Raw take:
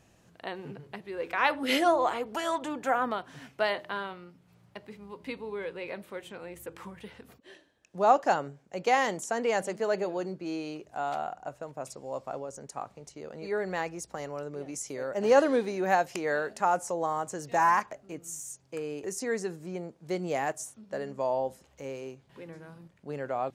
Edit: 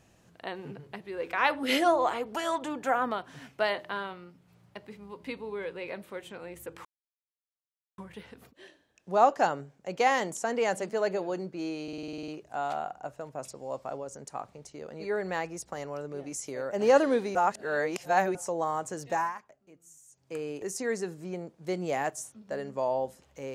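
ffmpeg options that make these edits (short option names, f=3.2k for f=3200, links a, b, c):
-filter_complex "[0:a]asplit=15[a][b][c][d][e][f][g][h][i][j][k][l][m][n][o];[a]atrim=end=6.85,asetpts=PTS-STARTPTS,afade=t=out:st=6.846:d=0.004:c=hsin,apad=pad_dur=1.13[p];[b]atrim=start=6.85:end=10.752,asetpts=PTS-STARTPTS,afade=t=in:d=0.004:c=hsin[q];[c]atrim=start=10.698:end=10.752[r];[d]atrim=start=10.698:end=10.752[s];[e]atrim=start=10.698:end=10.752[t];[f]atrim=start=10.698:end=10.752[u];[g]atrim=start=10.698:end=10.752[v];[h]atrim=start=10.698:end=10.752[w];[i]atrim=start=10.698:end=10.752[x];[j]atrim=start=10.698:end=10.752[y];[k]atrim=start=10.698:end=15.772[z];[l]atrim=start=15.768:end=16.772,asetpts=PTS-STARTPTS,areverse[aa];[m]atrim=start=16.768:end=17.75,asetpts=PTS-STARTPTS,afade=t=out:st=0.712:d=0.27:silence=0.16788[ab];[n]atrim=start=17.75:end=18.51,asetpts=PTS-STARTPTS,volume=-15.5dB[ac];[o]atrim=start=18.51,asetpts=PTS-STARTPTS,afade=t=in:d=0.27:silence=0.16788[ad];[p][q]concat=n=2:v=0:a=1[ae];[ae][r]acrossfade=d=0.004:c1=hsin:c2=hsin[af];[af][s]acrossfade=d=0.004:c1=hsin:c2=hsin[ag];[ag][t]acrossfade=d=0.004:c1=hsin:c2=hsin[ah];[ah][u]acrossfade=d=0.004:c1=hsin:c2=hsin[ai];[ai][v]acrossfade=d=0.004:c1=hsin:c2=hsin[aj];[aj][w]acrossfade=d=0.004:c1=hsin:c2=hsin[ak];[ak][x]acrossfade=d=0.004:c1=hsin:c2=hsin[al];[al][y]acrossfade=d=0.004:c1=hsin:c2=hsin[am];[am][z]acrossfade=d=0.004:c1=hsin:c2=hsin[an];[an][aa]acrossfade=d=0.004:c1=hsin:c2=hsin[ao];[ab][ac][ad]concat=n=3:v=0:a=1[ap];[ao][ap]acrossfade=d=0.004:c1=hsin:c2=hsin"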